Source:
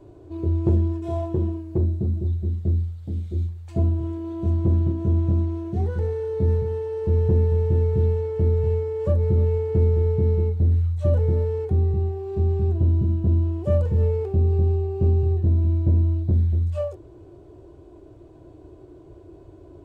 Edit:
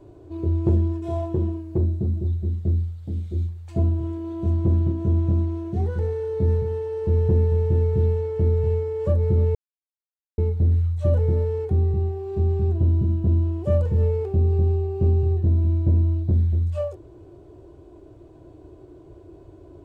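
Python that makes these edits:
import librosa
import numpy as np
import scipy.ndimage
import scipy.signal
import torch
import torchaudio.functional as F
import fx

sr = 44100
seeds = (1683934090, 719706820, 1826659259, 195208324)

y = fx.edit(x, sr, fx.silence(start_s=9.55, length_s=0.83), tone=tone)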